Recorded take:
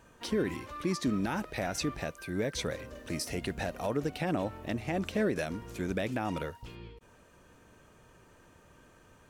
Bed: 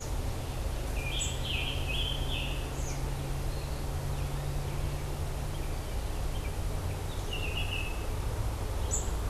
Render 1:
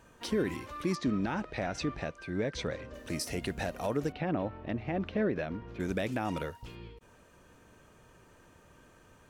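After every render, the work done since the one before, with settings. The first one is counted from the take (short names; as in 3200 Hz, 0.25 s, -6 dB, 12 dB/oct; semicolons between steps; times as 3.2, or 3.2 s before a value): 0.95–2.94 air absorption 110 m; 4.12–5.8 air absorption 300 m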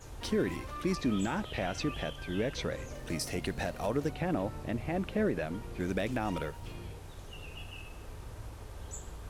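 add bed -12 dB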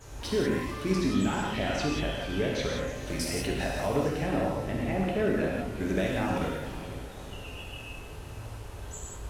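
diffused feedback echo 0.478 s, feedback 49%, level -14 dB; non-linear reverb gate 0.21 s flat, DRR -3 dB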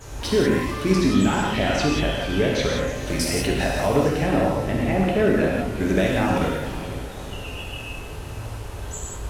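gain +8 dB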